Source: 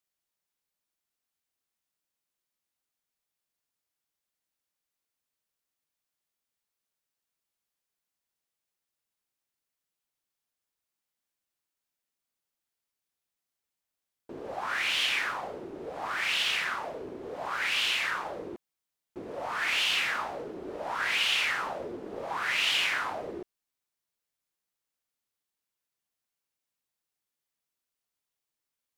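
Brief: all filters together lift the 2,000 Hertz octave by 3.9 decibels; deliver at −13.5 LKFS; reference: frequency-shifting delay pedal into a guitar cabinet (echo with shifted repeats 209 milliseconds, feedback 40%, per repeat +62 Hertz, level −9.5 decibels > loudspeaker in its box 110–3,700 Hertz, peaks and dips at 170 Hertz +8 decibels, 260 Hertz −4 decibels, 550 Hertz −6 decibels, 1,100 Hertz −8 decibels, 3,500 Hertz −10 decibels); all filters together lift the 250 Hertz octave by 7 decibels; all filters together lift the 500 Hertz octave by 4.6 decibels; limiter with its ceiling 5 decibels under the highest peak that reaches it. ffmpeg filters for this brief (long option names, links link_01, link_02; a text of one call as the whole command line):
ffmpeg -i in.wav -filter_complex "[0:a]equalizer=frequency=250:width_type=o:gain=8.5,equalizer=frequency=500:width_type=o:gain=6.5,equalizer=frequency=2000:width_type=o:gain=6,alimiter=limit=-16.5dB:level=0:latency=1,asplit=5[link_01][link_02][link_03][link_04][link_05];[link_02]adelay=209,afreqshift=62,volume=-9.5dB[link_06];[link_03]adelay=418,afreqshift=124,volume=-17.5dB[link_07];[link_04]adelay=627,afreqshift=186,volume=-25.4dB[link_08];[link_05]adelay=836,afreqshift=248,volume=-33.4dB[link_09];[link_01][link_06][link_07][link_08][link_09]amix=inputs=5:normalize=0,highpass=110,equalizer=frequency=170:width_type=q:width=4:gain=8,equalizer=frequency=260:width_type=q:width=4:gain=-4,equalizer=frequency=550:width_type=q:width=4:gain=-6,equalizer=frequency=1100:width_type=q:width=4:gain=-8,equalizer=frequency=3500:width_type=q:width=4:gain=-10,lowpass=frequency=3700:width=0.5412,lowpass=frequency=3700:width=1.3066,volume=15dB" out.wav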